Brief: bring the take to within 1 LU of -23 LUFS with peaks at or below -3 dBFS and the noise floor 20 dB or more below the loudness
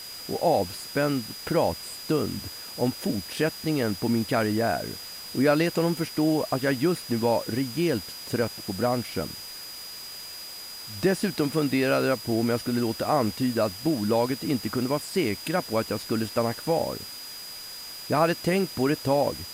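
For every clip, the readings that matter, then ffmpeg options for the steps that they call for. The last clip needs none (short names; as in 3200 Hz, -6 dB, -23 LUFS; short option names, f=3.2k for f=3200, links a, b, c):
steady tone 4900 Hz; tone level -39 dBFS; noise floor -40 dBFS; noise floor target -47 dBFS; loudness -27.0 LUFS; peak -9.5 dBFS; loudness target -23.0 LUFS
-> -af "bandreject=f=4.9k:w=30"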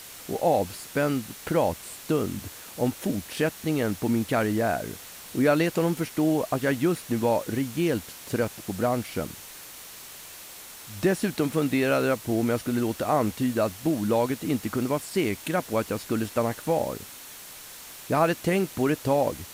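steady tone none; noise floor -44 dBFS; noise floor target -47 dBFS
-> -af "afftdn=nr=6:nf=-44"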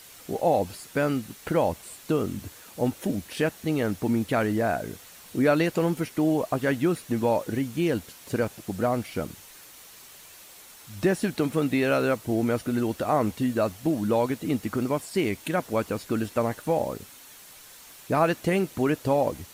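noise floor -49 dBFS; loudness -26.5 LUFS; peak -9.5 dBFS; loudness target -23.0 LUFS
-> -af "volume=3.5dB"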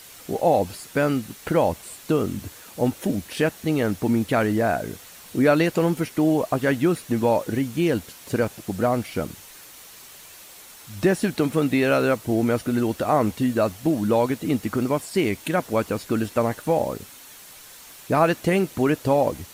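loudness -23.0 LUFS; peak -6.0 dBFS; noise floor -45 dBFS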